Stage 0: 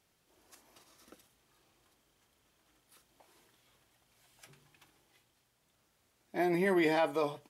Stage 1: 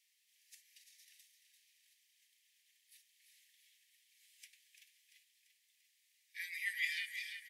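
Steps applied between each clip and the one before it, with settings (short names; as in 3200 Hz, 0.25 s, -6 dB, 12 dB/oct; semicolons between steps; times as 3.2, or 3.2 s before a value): steep high-pass 1800 Hz 96 dB/oct; feedback echo 0.342 s, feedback 57%, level -9 dB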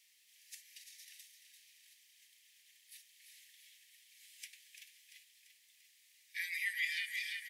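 compressor 2:1, threshold -47 dBFS, peak gain reduction 9 dB; gain +8 dB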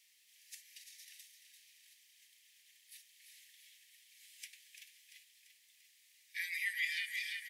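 nothing audible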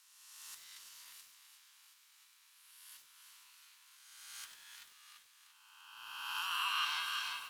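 spectral swells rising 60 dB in 1.63 s; ring modulator 820 Hz; lo-fi delay 96 ms, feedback 55%, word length 9-bit, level -9 dB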